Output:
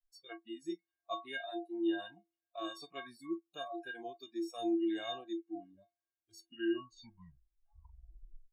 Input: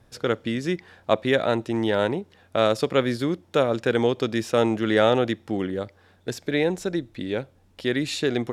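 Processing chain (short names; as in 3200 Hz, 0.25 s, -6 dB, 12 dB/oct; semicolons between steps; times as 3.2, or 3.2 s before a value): tape stop at the end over 2.44 s; metallic resonator 330 Hz, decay 0.43 s, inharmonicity 0.03; spectral noise reduction 29 dB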